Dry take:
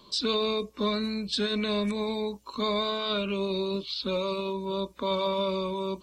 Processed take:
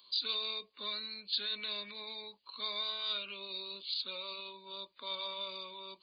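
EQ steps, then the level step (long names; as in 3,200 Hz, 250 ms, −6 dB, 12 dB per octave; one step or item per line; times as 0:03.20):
linear-phase brick-wall low-pass 4,900 Hz
first difference
+2.5 dB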